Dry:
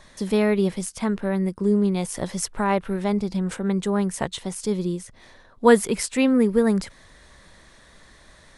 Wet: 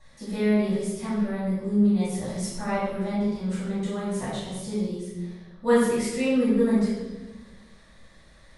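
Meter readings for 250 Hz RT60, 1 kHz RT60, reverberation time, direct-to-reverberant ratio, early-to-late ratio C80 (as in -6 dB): 1.9 s, 1.1 s, 1.2 s, -9.5 dB, 2.5 dB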